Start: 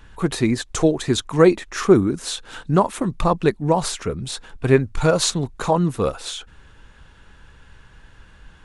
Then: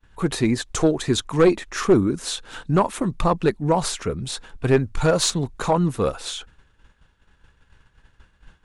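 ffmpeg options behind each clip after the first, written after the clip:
-af "aeval=exprs='0.891*(cos(1*acos(clip(val(0)/0.891,-1,1)))-cos(1*PI/2))+0.158*(cos(2*acos(clip(val(0)/0.891,-1,1)))-cos(2*PI/2))+0.0794*(cos(5*acos(clip(val(0)/0.891,-1,1)))-cos(5*PI/2))+0.00891*(cos(6*acos(clip(val(0)/0.891,-1,1)))-cos(6*PI/2))+0.01*(cos(8*acos(clip(val(0)/0.891,-1,1)))-cos(8*PI/2))':c=same,agate=range=0.0224:threshold=0.02:ratio=3:detection=peak,volume=0.668"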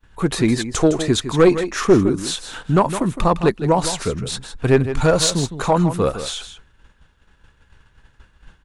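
-af "aecho=1:1:160:0.282,volume=1.41"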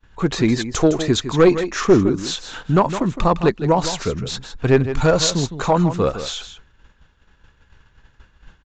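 -af "aresample=16000,aresample=44100"

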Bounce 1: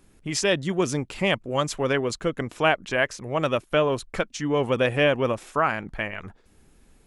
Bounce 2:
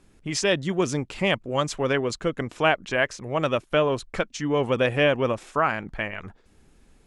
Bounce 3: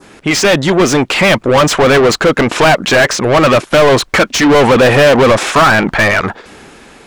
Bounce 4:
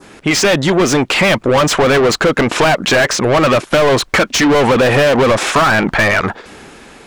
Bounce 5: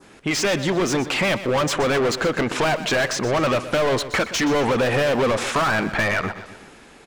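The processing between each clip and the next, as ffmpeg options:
-af "lowpass=8900"
-filter_complex "[0:a]adynamicequalizer=threshold=0.0126:dfrequency=2700:dqfactor=0.98:tfrequency=2700:tqfactor=0.98:attack=5:release=100:ratio=0.375:range=2:mode=cutabove:tftype=bell,dynaudnorm=f=270:g=9:m=3.76,asplit=2[s0][s1];[s1]highpass=f=720:p=1,volume=56.2,asoftclip=type=tanh:threshold=0.944[s2];[s0][s2]amix=inputs=2:normalize=0,lowpass=f=2900:p=1,volume=0.501"
-af "acompressor=threshold=0.355:ratio=6"
-af "aecho=1:1:124|248|372|496|620:0.211|0.101|0.0487|0.0234|0.0112,volume=0.355"

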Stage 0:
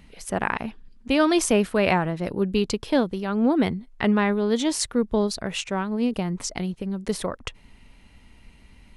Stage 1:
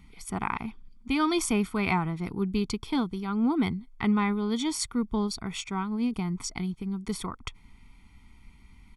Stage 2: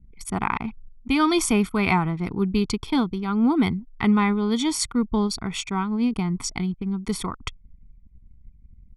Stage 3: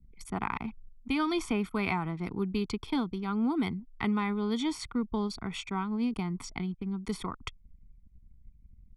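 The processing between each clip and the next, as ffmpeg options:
-af "aecho=1:1:0.9:0.98,volume=0.422"
-af "anlmdn=0.0251,volume=1.88"
-filter_complex "[0:a]acrossover=split=190|3900[s0][s1][s2];[s0]acompressor=threshold=0.02:ratio=4[s3];[s1]acompressor=threshold=0.0891:ratio=4[s4];[s2]acompressor=threshold=0.00708:ratio=4[s5];[s3][s4][s5]amix=inputs=3:normalize=0,volume=0.501"

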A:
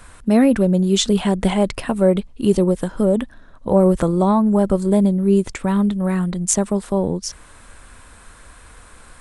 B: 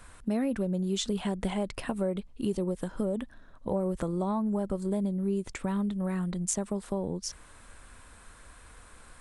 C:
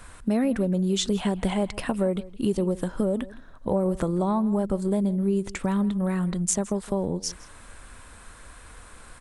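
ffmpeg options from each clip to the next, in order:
-af "acompressor=threshold=0.1:ratio=3,volume=0.398"
-filter_complex "[0:a]asplit=2[s0][s1];[s1]adelay=163.3,volume=0.112,highshelf=f=4000:g=-3.67[s2];[s0][s2]amix=inputs=2:normalize=0,volume=1.88"

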